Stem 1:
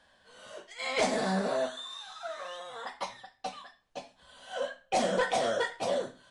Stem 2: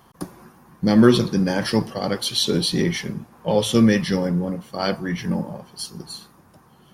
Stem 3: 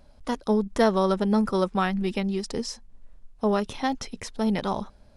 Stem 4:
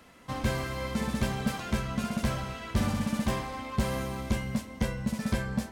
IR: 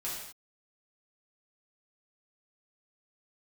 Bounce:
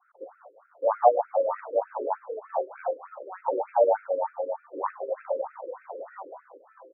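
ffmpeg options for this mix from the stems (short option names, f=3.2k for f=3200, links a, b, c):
-filter_complex "[0:a]flanger=delay=2.8:depth=9.4:regen=-39:speed=0.48:shape=triangular,adelay=500,volume=-5dB[a];[1:a]adynamicequalizer=threshold=0.0141:dfrequency=1200:dqfactor=0.98:tfrequency=1200:tqfactor=0.98:attack=5:release=100:ratio=0.375:range=2:mode=cutabove:tftype=bell,aeval=exprs='val(0)*sin(2*PI*360*n/s)':c=same,volume=2dB[b];[2:a]equalizer=f=3k:t=o:w=1.1:g=14.5,adelay=1500,volume=-13dB[c];[3:a]adelay=1450,volume=-10dB[d];[a][b][c][d]amix=inputs=4:normalize=0,highshelf=f=1.6k:t=q:w=1.5:g=-12.5,afftfilt=real='re*between(b*sr/1024,380*pow(1900/380,0.5+0.5*sin(2*PI*3.3*pts/sr))/1.41,380*pow(1900/380,0.5+0.5*sin(2*PI*3.3*pts/sr))*1.41)':imag='im*between(b*sr/1024,380*pow(1900/380,0.5+0.5*sin(2*PI*3.3*pts/sr))/1.41,380*pow(1900/380,0.5+0.5*sin(2*PI*3.3*pts/sr))*1.41)':win_size=1024:overlap=0.75"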